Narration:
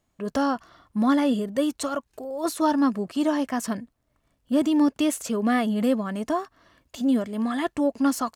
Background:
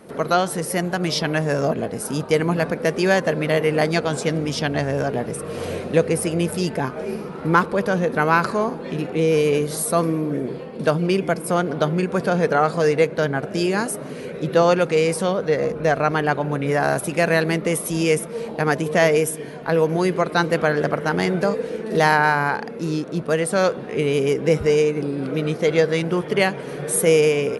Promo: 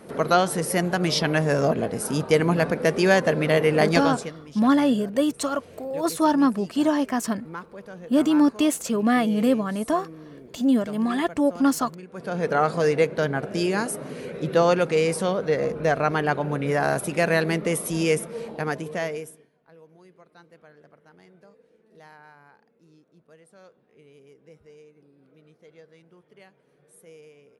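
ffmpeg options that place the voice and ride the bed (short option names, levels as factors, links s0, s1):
-filter_complex "[0:a]adelay=3600,volume=1.26[s0];[1:a]volume=6.68,afade=t=out:st=4.02:d=0.31:silence=0.105925,afade=t=in:st=12.12:d=0.48:silence=0.141254,afade=t=out:st=18.1:d=1.39:silence=0.0316228[s1];[s0][s1]amix=inputs=2:normalize=0"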